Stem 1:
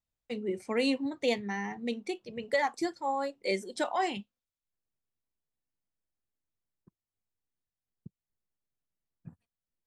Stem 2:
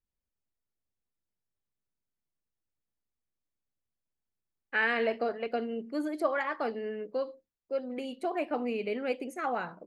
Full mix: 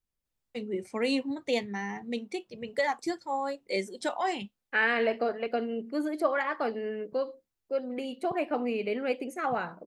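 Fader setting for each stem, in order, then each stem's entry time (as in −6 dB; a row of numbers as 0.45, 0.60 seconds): 0.0, +2.0 decibels; 0.25, 0.00 seconds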